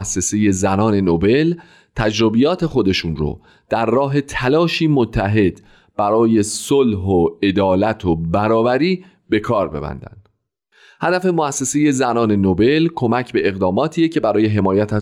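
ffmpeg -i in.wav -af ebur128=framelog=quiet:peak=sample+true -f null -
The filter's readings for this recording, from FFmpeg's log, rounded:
Integrated loudness:
  I:         -16.7 LUFS
  Threshold: -27.2 LUFS
Loudness range:
  LRA:         3.2 LU
  Threshold: -37.4 LUFS
  LRA low:   -19.5 LUFS
  LRA high:  -16.3 LUFS
Sample peak:
  Peak:       -5.7 dBFS
True peak:
  Peak:       -5.7 dBFS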